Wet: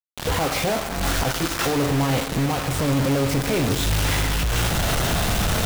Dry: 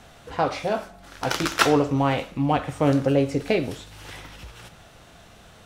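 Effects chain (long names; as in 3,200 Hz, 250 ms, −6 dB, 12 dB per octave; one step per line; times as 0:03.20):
camcorder AGC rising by 61 dB per second
low-shelf EQ 140 Hz +8.5 dB
in parallel at 0 dB: output level in coarse steps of 12 dB
on the sum: brickwall limiter −10 dBFS, peak gain reduction 11 dB
bit reduction 4 bits
amplitude tremolo 0.57 Hz, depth 66%
gain into a clipping stage and back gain 24.5 dB
convolution reverb RT60 3.5 s, pre-delay 12 ms, DRR 11 dB
level +5.5 dB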